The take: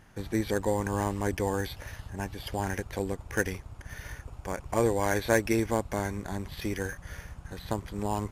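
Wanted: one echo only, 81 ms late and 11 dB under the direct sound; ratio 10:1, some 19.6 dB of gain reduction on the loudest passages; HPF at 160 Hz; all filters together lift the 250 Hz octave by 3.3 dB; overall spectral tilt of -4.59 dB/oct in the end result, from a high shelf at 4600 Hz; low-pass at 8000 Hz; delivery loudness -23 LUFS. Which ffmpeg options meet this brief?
-af "highpass=160,lowpass=8k,equalizer=f=250:t=o:g=5.5,highshelf=f=4.6k:g=-7,acompressor=threshold=-39dB:ratio=10,aecho=1:1:81:0.282,volume=22dB"

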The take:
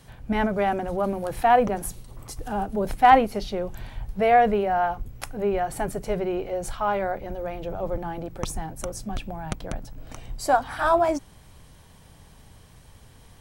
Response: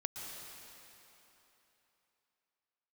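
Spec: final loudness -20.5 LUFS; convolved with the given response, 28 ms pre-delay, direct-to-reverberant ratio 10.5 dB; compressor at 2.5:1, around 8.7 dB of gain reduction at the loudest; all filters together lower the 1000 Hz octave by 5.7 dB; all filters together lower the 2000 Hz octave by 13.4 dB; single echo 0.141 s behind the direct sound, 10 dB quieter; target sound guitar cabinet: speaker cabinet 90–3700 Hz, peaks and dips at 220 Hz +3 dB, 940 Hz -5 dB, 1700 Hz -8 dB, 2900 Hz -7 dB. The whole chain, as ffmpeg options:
-filter_complex "[0:a]equalizer=f=1k:t=o:g=-5,equalizer=f=2k:t=o:g=-9,acompressor=threshold=-28dB:ratio=2.5,aecho=1:1:141:0.316,asplit=2[a][b];[1:a]atrim=start_sample=2205,adelay=28[c];[b][c]afir=irnorm=-1:irlink=0,volume=-11dB[d];[a][d]amix=inputs=2:normalize=0,highpass=90,equalizer=f=220:t=q:w=4:g=3,equalizer=f=940:t=q:w=4:g=-5,equalizer=f=1.7k:t=q:w=4:g=-8,equalizer=f=2.9k:t=q:w=4:g=-7,lowpass=f=3.7k:w=0.5412,lowpass=f=3.7k:w=1.3066,volume=12dB"

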